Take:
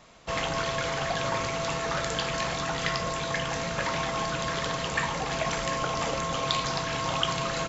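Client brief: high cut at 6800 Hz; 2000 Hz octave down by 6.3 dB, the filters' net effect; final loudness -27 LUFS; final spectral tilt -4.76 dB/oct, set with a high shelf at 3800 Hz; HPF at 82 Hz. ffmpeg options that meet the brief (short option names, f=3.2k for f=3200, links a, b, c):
-af "highpass=82,lowpass=6.8k,equalizer=f=2k:t=o:g=-6,highshelf=f=3.8k:g=-8,volume=5dB"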